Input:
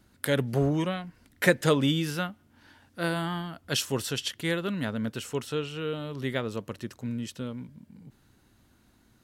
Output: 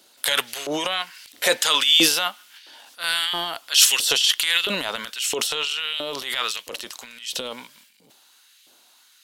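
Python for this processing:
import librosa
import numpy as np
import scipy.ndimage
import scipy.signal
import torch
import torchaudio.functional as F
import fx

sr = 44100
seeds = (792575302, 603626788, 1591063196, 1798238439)

y = fx.high_shelf_res(x, sr, hz=2400.0, db=8.5, q=1.5)
y = fx.filter_lfo_highpass(y, sr, shape='saw_up', hz=1.5, low_hz=460.0, high_hz=2400.0, q=1.6)
y = fx.transient(y, sr, attack_db=-8, sustain_db=10)
y = y * librosa.db_to_amplitude(6.0)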